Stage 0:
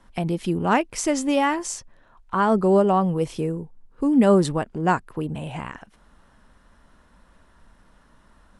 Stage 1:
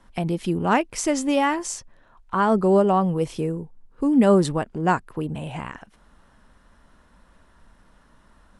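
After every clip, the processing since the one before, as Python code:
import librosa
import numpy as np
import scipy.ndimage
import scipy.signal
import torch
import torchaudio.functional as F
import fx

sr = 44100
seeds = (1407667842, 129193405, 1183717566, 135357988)

y = x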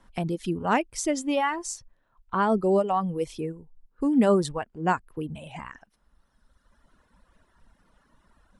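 y = fx.dereverb_blind(x, sr, rt60_s=1.9)
y = y * librosa.db_to_amplitude(-3.0)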